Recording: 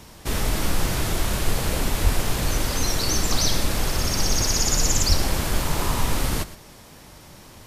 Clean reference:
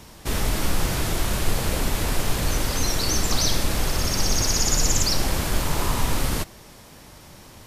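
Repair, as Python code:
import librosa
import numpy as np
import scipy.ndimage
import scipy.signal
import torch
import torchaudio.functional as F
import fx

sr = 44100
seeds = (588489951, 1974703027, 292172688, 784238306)

y = fx.fix_deplosive(x, sr, at_s=(2.03, 5.08))
y = fx.fix_echo_inverse(y, sr, delay_ms=116, level_db=-16.0)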